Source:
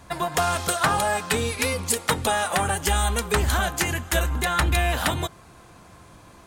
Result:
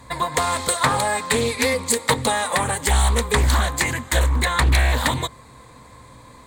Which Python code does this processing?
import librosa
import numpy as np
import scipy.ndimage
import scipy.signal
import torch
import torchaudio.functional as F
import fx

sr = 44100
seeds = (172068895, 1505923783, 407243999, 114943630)

y = fx.ripple_eq(x, sr, per_octave=1.0, db=10)
y = fx.doppler_dist(y, sr, depth_ms=0.44)
y = F.gain(torch.from_numpy(y), 2.0).numpy()